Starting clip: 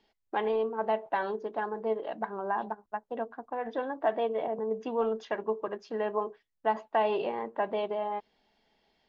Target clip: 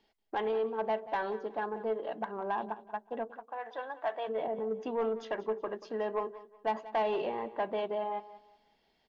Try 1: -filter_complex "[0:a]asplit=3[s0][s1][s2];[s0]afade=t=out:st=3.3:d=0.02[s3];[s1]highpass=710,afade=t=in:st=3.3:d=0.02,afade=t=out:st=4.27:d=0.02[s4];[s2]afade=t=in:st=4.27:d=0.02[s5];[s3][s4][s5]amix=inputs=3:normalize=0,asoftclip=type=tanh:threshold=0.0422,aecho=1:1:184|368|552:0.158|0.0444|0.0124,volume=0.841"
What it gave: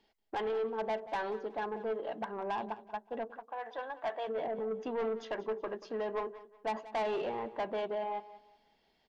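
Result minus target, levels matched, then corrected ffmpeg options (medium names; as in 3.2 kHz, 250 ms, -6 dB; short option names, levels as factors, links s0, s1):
saturation: distortion +8 dB
-filter_complex "[0:a]asplit=3[s0][s1][s2];[s0]afade=t=out:st=3.3:d=0.02[s3];[s1]highpass=710,afade=t=in:st=3.3:d=0.02,afade=t=out:st=4.27:d=0.02[s4];[s2]afade=t=in:st=4.27:d=0.02[s5];[s3][s4][s5]amix=inputs=3:normalize=0,asoftclip=type=tanh:threshold=0.0891,aecho=1:1:184|368|552:0.158|0.0444|0.0124,volume=0.841"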